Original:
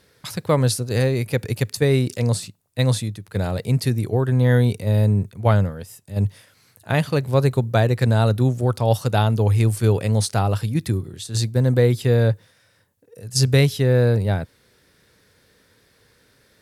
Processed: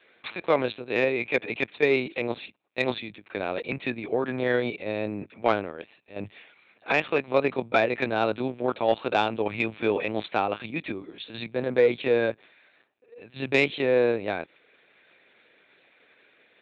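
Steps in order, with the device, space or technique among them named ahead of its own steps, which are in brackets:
talking toy (linear-prediction vocoder at 8 kHz pitch kept; high-pass filter 360 Hz 12 dB per octave; parametric band 2,400 Hz +11.5 dB 0.27 octaves; soft clipping −7.5 dBFS, distortion −23 dB)

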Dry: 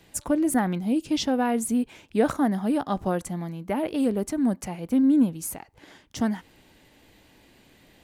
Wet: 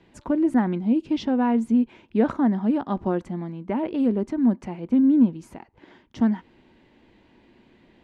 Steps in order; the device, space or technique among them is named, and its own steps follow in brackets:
inside a cardboard box (low-pass filter 3,100 Hz 12 dB per octave; hollow resonant body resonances 230/350/950 Hz, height 8 dB, ringing for 45 ms)
level −2.5 dB

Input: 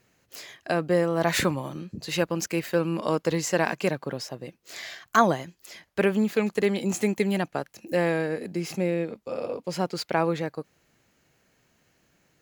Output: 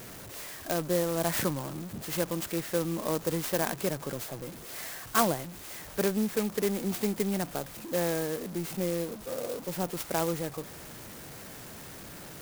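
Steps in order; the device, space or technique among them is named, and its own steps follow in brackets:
early CD player with a faulty converter (converter with a step at zero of −32.5 dBFS; converter with an unsteady clock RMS 0.092 ms)
level −6 dB

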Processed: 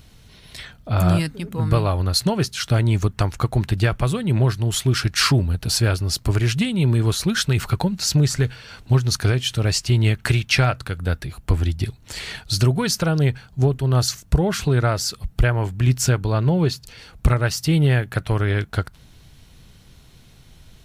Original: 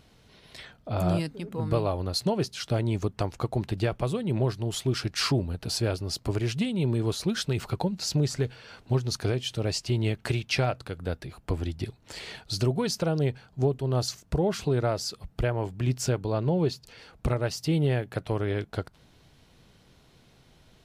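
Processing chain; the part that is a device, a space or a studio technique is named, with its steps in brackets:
notch filter 4,900 Hz, Q 26
dynamic equaliser 1,500 Hz, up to +7 dB, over −48 dBFS, Q 1.2
smiley-face EQ (low-shelf EQ 110 Hz +8.5 dB; parametric band 520 Hz −5.5 dB 2.4 octaves; high-shelf EQ 7,900 Hz +7.5 dB)
level +7 dB

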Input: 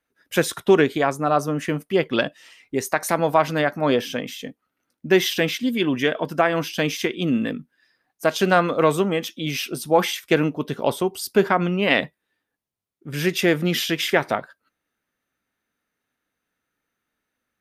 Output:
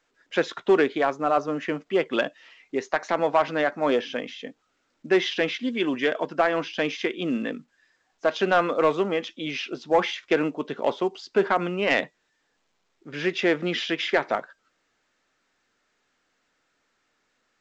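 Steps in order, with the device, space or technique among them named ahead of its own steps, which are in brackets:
telephone (band-pass filter 280–3,300 Hz; soft clipping −8.5 dBFS, distortion −19 dB; level −1 dB; A-law companding 128 kbit/s 16,000 Hz)

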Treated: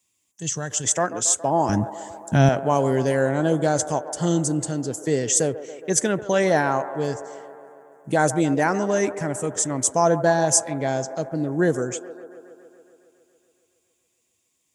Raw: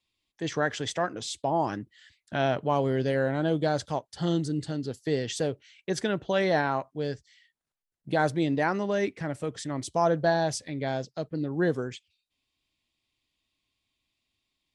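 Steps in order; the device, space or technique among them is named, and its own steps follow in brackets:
budget condenser microphone (high-pass filter 91 Hz; high shelf with overshoot 5,400 Hz +9.5 dB, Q 3)
0:00.38–0:00.84: gain on a spectral selection 210–2,600 Hz −11 dB
0:01.69–0:02.49: bass and treble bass +15 dB, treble +5 dB
delay with a band-pass on its return 139 ms, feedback 72%, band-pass 730 Hz, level −12 dB
level +5.5 dB

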